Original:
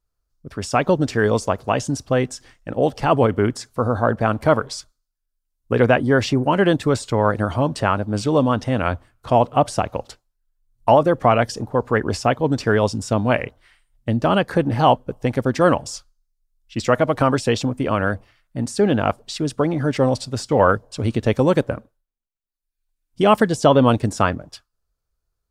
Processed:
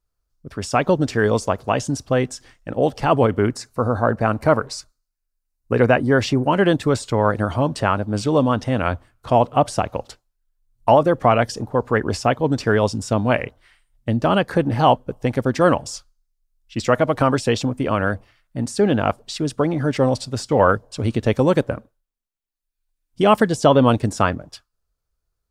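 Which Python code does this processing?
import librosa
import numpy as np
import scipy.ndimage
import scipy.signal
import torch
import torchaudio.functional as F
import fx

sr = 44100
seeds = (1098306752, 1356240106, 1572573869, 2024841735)

y = fx.notch(x, sr, hz=3300.0, q=5.1, at=(3.48, 6.12))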